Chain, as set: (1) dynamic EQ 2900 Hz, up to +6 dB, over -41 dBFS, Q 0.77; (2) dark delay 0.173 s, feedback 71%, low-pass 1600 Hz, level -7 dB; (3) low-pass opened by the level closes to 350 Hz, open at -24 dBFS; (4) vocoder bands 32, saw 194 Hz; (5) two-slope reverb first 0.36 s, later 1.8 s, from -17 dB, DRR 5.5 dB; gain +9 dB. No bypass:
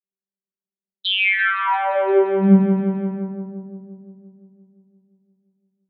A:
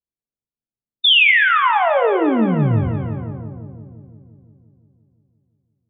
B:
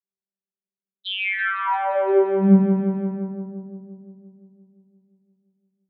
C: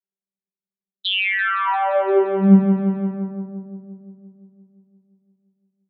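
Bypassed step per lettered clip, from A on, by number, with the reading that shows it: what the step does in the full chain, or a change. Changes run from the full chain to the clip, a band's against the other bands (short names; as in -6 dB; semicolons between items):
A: 4, 250 Hz band -7.0 dB; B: 1, momentary loudness spread change +2 LU; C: 5, 2 kHz band -2.5 dB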